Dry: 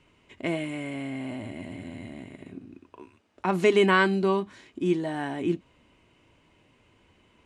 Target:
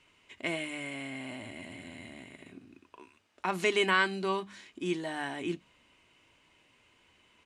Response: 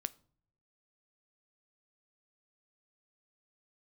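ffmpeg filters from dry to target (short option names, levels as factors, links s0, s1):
-filter_complex "[0:a]tiltshelf=f=900:g=-6,bandreject=f=50:t=h:w=6,bandreject=f=100:t=h:w=6,bandreject=f=150:t=h:w=6,bandreject=f=200:t=h:w=6,asplit=2[s0][s1];[s1]alimiter=limit=0.178:level=0:latency=1:release=409,volume=0.794[s2];[s0][s2]amix=inputs=2:normalize=0,aresample=32000,aresample=44100,volume=0.376"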